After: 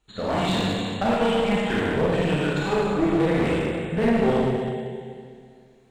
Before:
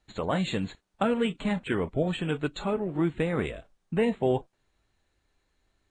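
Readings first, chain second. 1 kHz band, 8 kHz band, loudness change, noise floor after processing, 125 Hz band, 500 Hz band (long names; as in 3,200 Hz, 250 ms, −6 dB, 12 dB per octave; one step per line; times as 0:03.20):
+8.0 dB, +8.0 dB, +6.0 dB, −53 dBFS, +6.0 dB, +6.5 dB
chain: rippled gain that drifts along the octave scale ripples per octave 0.68, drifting +2.6 Hz, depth 9 dB
four-comb reverb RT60 2.2 s, combs from 27 ms, DRR −7 dB
asymmetric clip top −23.5 dBFS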